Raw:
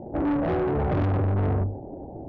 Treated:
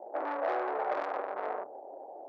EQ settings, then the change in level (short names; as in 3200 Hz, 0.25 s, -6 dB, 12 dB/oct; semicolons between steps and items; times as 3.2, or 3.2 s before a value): HPF 550 Hz 24 dB/oct; bell 3000 Hz -6.5 dB 0.77 oct; 0.0 dB